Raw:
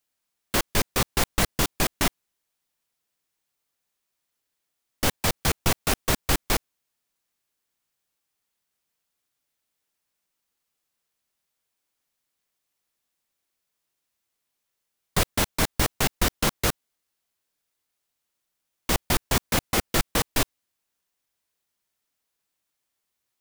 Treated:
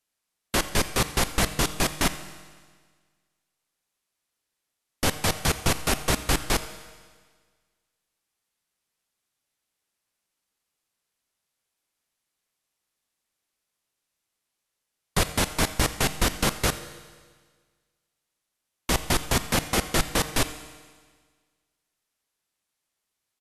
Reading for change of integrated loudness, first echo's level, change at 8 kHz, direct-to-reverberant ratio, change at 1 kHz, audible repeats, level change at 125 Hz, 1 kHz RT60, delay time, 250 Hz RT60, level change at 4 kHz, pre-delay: -0.5 dB, -20.0 dB, +0.5 dB, 10.5 dB, +0.5 dB, 1, +0.5 dB, 1.6 s, 87 ms, 1.6 s, +0.5 dB, 7 ms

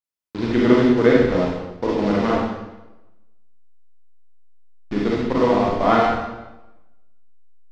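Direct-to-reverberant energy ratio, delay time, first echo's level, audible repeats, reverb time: -4.5 dB, none, none, none, 1.0 s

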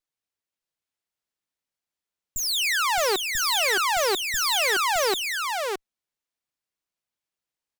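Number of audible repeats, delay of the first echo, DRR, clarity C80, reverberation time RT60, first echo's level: 1, 0.617 s, none, none, none, -4.5 dB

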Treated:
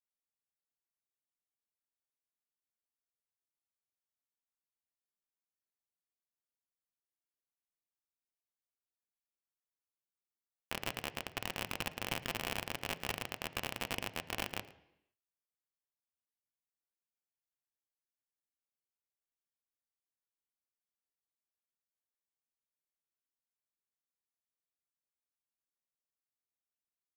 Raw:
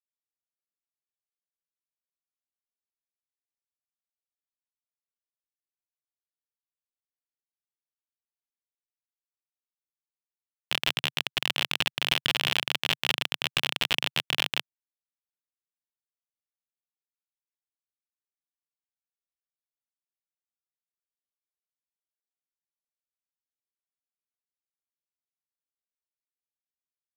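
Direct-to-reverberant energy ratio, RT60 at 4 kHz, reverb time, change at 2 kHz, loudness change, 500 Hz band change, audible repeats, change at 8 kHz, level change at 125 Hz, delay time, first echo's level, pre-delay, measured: 11.5 dB, 0.85 s, 0.80 s, -12.0 dB, -13.0 dB, -4.5 dB, 1, -7.0 dB, -5.0 dB, 0.111 s, -21.0 dB, 3 ms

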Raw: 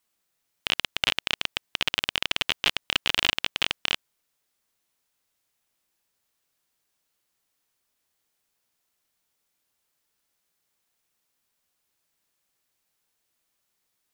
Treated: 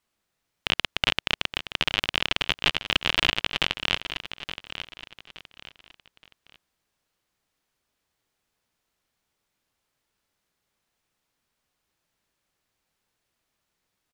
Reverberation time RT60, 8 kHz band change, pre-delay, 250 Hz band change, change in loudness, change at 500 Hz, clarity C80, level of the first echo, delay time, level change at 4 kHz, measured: none, -3.0 dB, none, +5.0 dB, +0.5 dB, +3.5 dB, none, -11.0 dB, 0.871 s, +0.5 dB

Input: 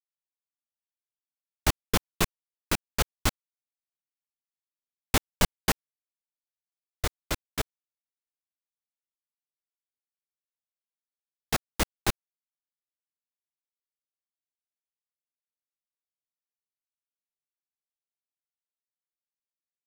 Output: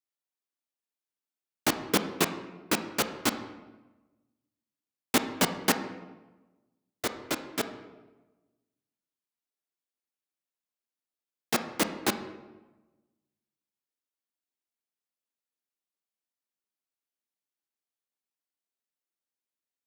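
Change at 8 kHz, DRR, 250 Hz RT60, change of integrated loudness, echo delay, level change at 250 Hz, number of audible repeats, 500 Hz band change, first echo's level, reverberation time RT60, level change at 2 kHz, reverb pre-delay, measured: 0.0 dB, 8.0 dB, 1.3 s, +0.5 dB, none, +4.0 dB, none, +3.0 dB, none, 1.1 s, +0.5 dB, 21 ms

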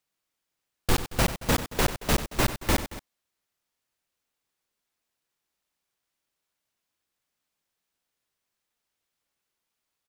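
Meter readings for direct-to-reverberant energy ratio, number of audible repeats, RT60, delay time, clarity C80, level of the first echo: none, 2, none, 94 ms, none, -12.5 dB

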